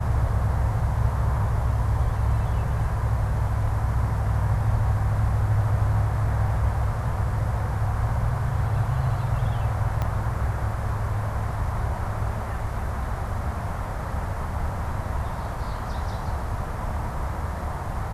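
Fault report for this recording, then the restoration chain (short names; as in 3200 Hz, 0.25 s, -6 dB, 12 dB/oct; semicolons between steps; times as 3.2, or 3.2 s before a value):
10.02 pop -15 dBFS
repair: de-click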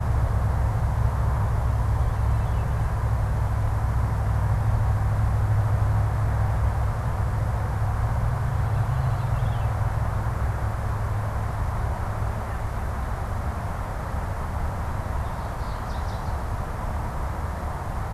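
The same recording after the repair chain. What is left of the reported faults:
10.02 pop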